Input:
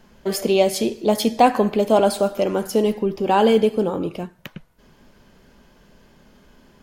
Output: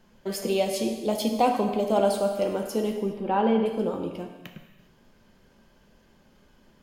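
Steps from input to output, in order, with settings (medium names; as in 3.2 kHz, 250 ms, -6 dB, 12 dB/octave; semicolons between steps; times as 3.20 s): 1.13–1.87 s: peaking EQ 1.7 kHz -12 dB 0.22 oct; 2.96–3.66 s: low-pass 2.2 kHz 12 dB/octave; gated-style reverb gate 440 ms falling, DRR 4.5 dB; trim -8 dB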